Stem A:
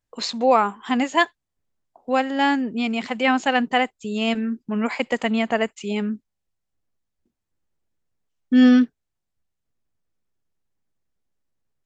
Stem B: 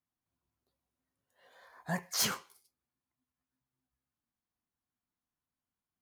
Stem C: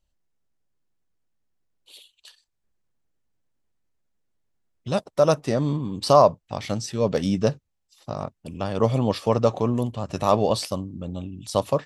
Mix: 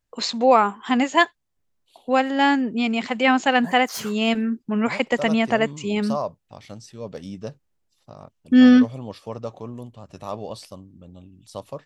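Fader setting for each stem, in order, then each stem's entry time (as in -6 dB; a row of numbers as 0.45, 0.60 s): +1.5, -2.0, -12.0 dB; 0.00, 1.75, 0.00 s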